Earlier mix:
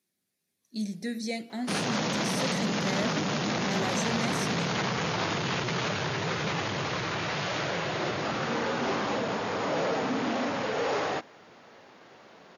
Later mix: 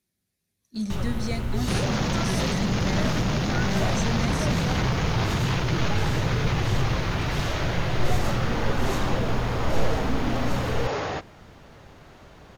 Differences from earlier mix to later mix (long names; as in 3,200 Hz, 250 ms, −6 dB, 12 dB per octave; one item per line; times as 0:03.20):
first sound: unmuted
master: remove high-pass filter 210 Hz 12 dB per octave